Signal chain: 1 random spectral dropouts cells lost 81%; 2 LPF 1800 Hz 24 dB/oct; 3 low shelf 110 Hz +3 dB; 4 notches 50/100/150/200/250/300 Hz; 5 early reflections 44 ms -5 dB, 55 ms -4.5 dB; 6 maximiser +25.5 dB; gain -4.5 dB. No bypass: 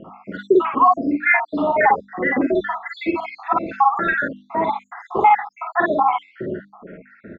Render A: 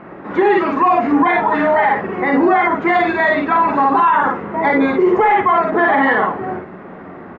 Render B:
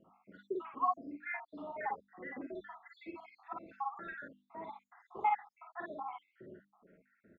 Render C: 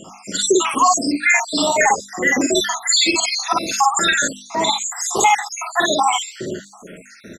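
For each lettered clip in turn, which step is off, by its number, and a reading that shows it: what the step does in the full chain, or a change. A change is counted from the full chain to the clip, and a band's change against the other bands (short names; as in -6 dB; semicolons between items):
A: 1, 2 kHz band -2.0 dB; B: 6, crest factor change +6.0 dB; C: 2, momentary loudness spread change -5 LU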